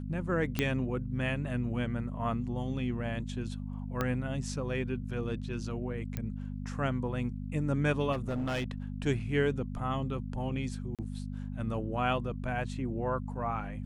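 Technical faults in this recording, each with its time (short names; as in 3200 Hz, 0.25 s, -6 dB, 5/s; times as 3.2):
hum 50 Hz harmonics 5 -38 dBFS
0.59 pop -14 dBFS
4.01 pop -16 dBFS
6.17 pop -21 dBFS
8.12–8.72 clipped -29 dBFS
10.95–10.99 gap 37 ms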